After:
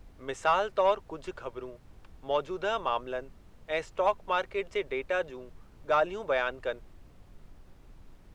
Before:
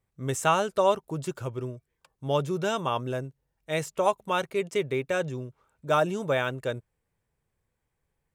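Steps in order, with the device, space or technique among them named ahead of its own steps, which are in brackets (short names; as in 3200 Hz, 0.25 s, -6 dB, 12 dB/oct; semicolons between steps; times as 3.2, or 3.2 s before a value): aircraft cabin announcement (BPF 460–3400 Hz; soft clip -13.5 dBFS, distortion -20 dB; brown noise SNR 18 dB)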